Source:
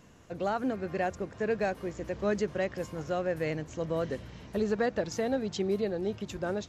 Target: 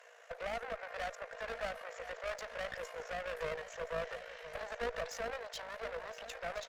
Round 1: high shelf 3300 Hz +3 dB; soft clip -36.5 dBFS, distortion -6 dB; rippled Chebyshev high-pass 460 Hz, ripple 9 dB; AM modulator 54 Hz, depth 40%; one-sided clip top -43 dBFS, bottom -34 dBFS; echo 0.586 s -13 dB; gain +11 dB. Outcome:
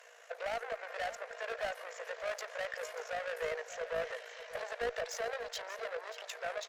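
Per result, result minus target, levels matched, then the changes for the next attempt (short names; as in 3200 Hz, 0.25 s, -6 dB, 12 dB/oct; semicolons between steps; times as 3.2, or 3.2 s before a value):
echo 0.435 s early; one-sided clip: distortion -9 dB; 8000 Hz band +2.5 dB
change: echo 1.021 s -13 dB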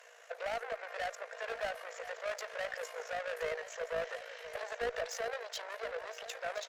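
one-sided clip: distortion -9 dB; 8000 Hz band +2.5 dB
change: one-sided clip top -52.5 dBFS, bottom -34 dBFS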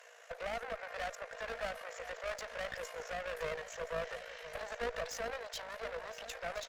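8000 Hz band +3.0 dB
change: high shelf 3300 Hz -3.5 dB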